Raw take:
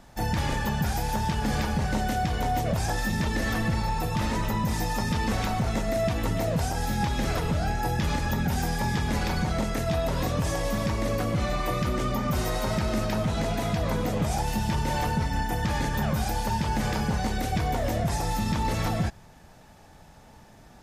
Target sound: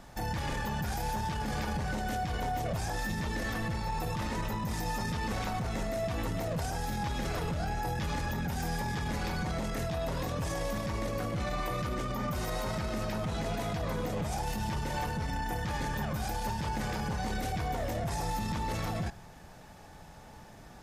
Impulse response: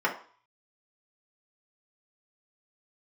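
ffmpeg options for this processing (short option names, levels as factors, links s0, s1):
-filter_complex "[0:a]aeval=exprs='0.158*(cos(1*acos(clip(val(0)/0.158,-1,1)))-cos(1*PI/2))+0.02*(cos(2*acos(clip(val(0)/0.158,-1,1)))-cos(2*PI/2))':c=same,alimiter=level_in=1.26:limit=0.0631:level=0:latency=1:release=36,volume=0.794,asplit=2[s0][s1];[1:a]atrim=start_sample=2205[s2];[s1][s2]afir=irnorm=-1:irlink=0,volume=0.0668[s3];[s0][s3]amix=inputs=2:normalize=0"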